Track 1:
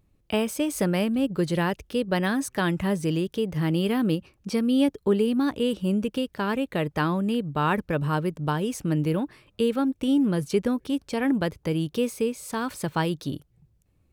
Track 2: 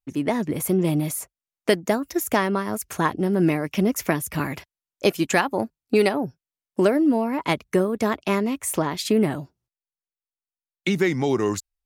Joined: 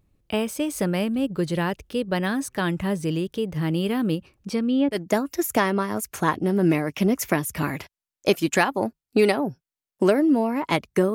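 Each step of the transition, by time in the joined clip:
track 1
0:04.54–0:05.01: low-pass filter 8,400 Hz → 1,100 Hz
0:04.96: continue with track 2 from 0:01.73, crossfade 0.10 s

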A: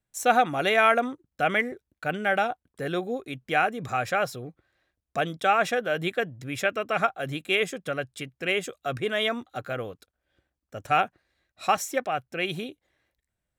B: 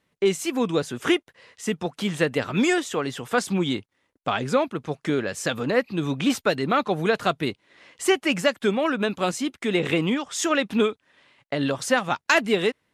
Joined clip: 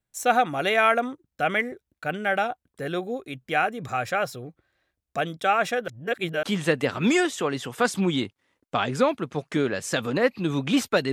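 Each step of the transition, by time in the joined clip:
A
0:05.88–0:06.43: reverse
0:06.43: continue with B from 0:01.96

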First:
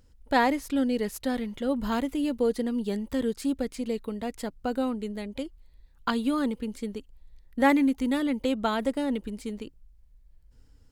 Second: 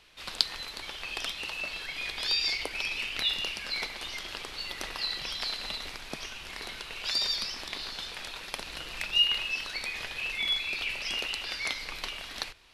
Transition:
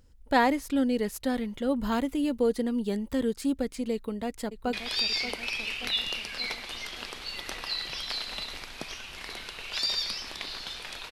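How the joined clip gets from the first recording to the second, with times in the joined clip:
first
0:03.93–0:04.73: delay throw 580 ms, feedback 60%, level −11 dB
0:04.73: continue with second from 0:02.05

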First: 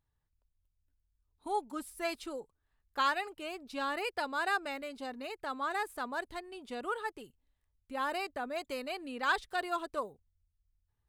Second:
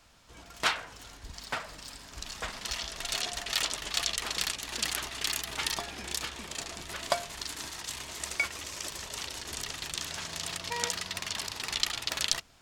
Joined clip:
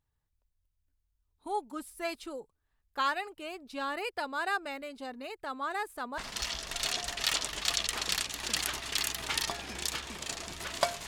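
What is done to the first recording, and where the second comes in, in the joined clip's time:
first
0:06.18: continue with second from 0:02.47

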